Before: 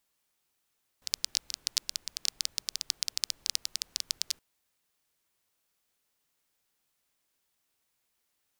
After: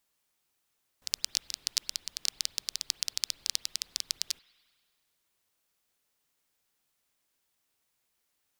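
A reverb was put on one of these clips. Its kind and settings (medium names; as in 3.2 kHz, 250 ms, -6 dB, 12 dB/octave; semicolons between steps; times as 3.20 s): spring tank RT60 1.9 s, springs 43/48 ms, chirp 55 ms, DRR 18 dB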